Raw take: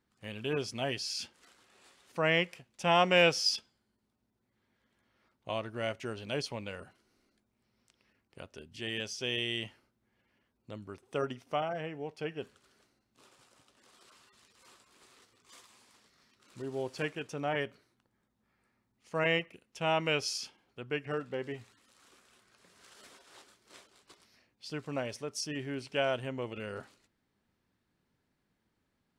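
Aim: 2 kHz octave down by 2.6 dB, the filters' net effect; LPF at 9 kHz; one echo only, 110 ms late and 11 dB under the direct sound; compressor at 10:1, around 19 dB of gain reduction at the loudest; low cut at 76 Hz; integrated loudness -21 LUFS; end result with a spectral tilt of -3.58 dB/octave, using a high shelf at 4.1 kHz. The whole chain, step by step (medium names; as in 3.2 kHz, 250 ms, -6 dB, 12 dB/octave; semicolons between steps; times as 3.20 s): high-pass 76 Hz; low-pass 9 kHz; peaking EQ 2 kHz -5 dB; treble shelf 4.1 kHz +6 dB; compression 10:1, threshold -40 dBFS; delay 110 ms -11 dB; trim +24.5 dB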